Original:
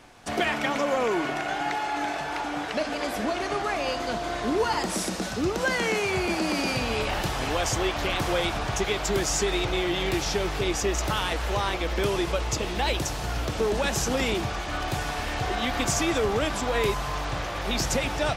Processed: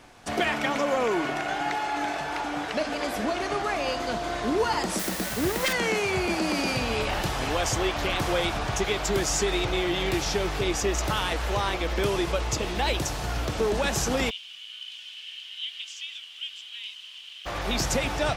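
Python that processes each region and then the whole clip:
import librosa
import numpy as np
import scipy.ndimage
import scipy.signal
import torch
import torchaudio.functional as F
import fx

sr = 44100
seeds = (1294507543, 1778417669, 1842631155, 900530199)

y = fx.chain(x, sr, fx.self_delay(depth_ms=0.36),
    fx.peak_eq(hz=1900.0, db=6.0, octaves=0.32),
    fx.quant_dither(seeds[0], bits=6, dither='triangular'), at=(4.99, 5.73))
y = fx.ladder_highpass(y, sr, hz=2900.0, resonance_pct=85, at=(14.29, 17.45), fade=0.02)
y = fx.dmg_noise_colour(y, sr, seeds[1], colour='blue', level_db=-50.0, at=(14.29, 17.45), fade=0.02)
y = fx.air_absorb(y, sr, metres=84.0, at=(14.29, 17.45), fade=0.02)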